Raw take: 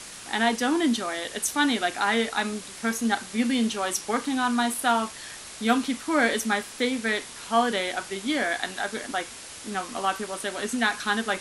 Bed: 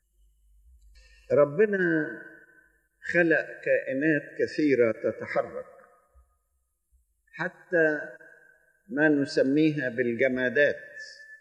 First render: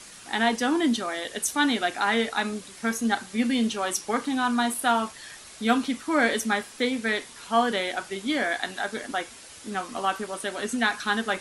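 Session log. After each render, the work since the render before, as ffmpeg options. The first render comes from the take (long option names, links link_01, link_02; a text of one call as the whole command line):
ffmpeg -i in.wav -af "afftdn=noise_reduction=6:noise_floor=-42" out.wav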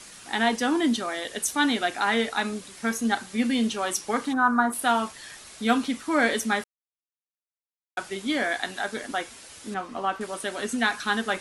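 ffmpeg -i in.wav -filter_complex "[0:a]asplit=3[link_01][link_02][link_03];[link_01]afade=type=out:start_time=4.32:duration=0.02[link_04];[link_02]highshelf=frequency=2000:width_type=q:width=3:gain=-12.5,afade=type=in:start_time=4.32:duration=0.02,afade=type=out:start_time=4.72:duration=0.02[link_05];[link_03]afade=type=in:start_time=4.72:duration=0.02[link_06];[link_04][link_05][link_06]amix=inputs=3:normalize=0,asettb=1/sr,asplit=3[link_07][link_08][link_09];[link_07]atrim=end=9.744[link_10];[link_08]atrim=start=9.74:end=10.21,asetpts=PTS-STARTPTS,afade=type=in:duration=0.004:curve=qsin,afade=type=out:start_time=0.466:duration=0.004:curve=qsin,lowpass=frequency=1900:poles=1[link_11];[link_09]atrim=start=10.206[link_12];[link_10][link_11]acrossfade=duration=0.004:curve1=hsin:curve2=qsin[link_13];[link_13][link_12]acrossfade=duration=0.004:curve1=qsin:curve2=hsin,asplit=3[link_14][link_15][link_16];[link_14]atrim=end=6.64,asetpts=PTS-STARTPTS,afade=type=out:start_time=6.636:duration=0.004:curve=hsin[link_17];[link_15]atrim=start=6.64:end=7.97,asetpts=PTS-STARTPTS,volume=0[link_18];[link_16]atrim=start=7.97,asetpts=PTS-STARTPTS,afade=type=in:duration=0.004:curve=hsin[link_19];[link_17][link_18][link_19]concat=n=3:v=0:a=1" out.wav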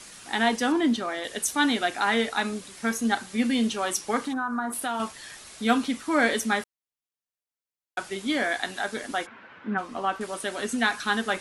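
ffmpeg -i in.wav -filter_complex "[0:a]asettb=1/sr,asplit=3[link_01][link_02][link_03];[link_01]atrim=end=0.724[link_04];[link_02]atrim=start=0.72:end=1.24,asetpts=PTS-STARTPTS,afade=type=in:duration=0.004:curve=qsin,afade=type=out:start_time=0.516:duration=0.004:curve=qsin,aemphasis=mode=reproduction:type=cd[link_05];[link_03]atrim=start=1.236[link_06];[link_04][link_05]acrossfade=duration=0.004:curve1=hsin:curve2=qsin[link_07];[link_07][link_06]acrossfade=duration=0.004:curve1=qsin:curve2=hsin,asettb=1/sr,asplit=3[link_08][link_09][link_10];[link_08]atrim=end=4.274[link_11];[link_09]atrim=start=4.27:end=5,asetpts=PTS-STARTPTS,afade=type=in:duration=0.004:curve=qsin,afade=type=out:start_time=0.726:duration=0.004:curve=qsin,acompressor=threshold=-27dB:ratio=3:attack=3.2:release=140:knee=1:detection=peak[link_12];[link_10]atrim=start=4.996[link_13];[link_11][link_12]acrossfade=duration=0.004:curve1=hsin:curve2=qsin[link_14];[link_14][link_13]acrossfade=duration=0.004:curve1=qsin:curve2=hsin,asplit=3[link_15][link_16][link_17];[link_15]afade=type=out:start_time=9.25:duration=0.02[link_18];[link_16]highpass=frequency=110:width=0.5412,highpass=frequency=110:width=1.3066,equalizer=frequency=210:width_type=q:width=4:gain=7,equalizer=frequency=1000:width_type=q:width=4:gain=7,equalizer=frequency=1500:width_type=q:width=4:gain=9,lowpass=frequency=2500:width=0.5412,lowpass=frequency=2500:width=1.3066,afade=type=in:start_time=9.25:duration=0.02,afade=type=out:start_time=9.77:duration=0.02[link_19];[link_17]afade=type=in:start_time=9.77:duration=0.02[link_20];[link_18][link_19][link_20]amix=inputs=3:normalize=0" out.wav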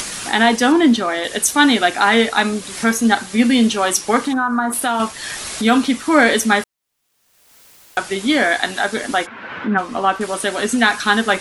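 ffmpeg -i in.wav -af "acompressor=mode=upward:threshold=-29dB:ratio=2.5,alimiter=level_in=10.5dB:limit=-1dB:release=50:level=0:latency=1" out.wav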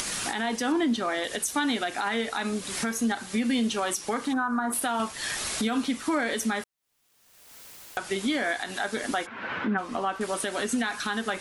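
ffmpeg -i in.wav -af "acompressor=threshold=-31dB:ratio=2,alimiter=limit=-17.5dB:level=0:latency=1:release=85" out.wav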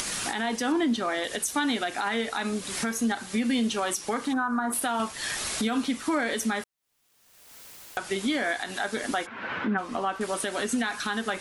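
ffmpeg -i in.wav -af anull out.wav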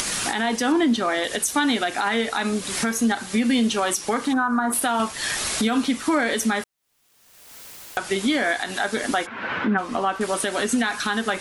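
ffmpeg -i in.wav -af "volume=5.5dB" out.wav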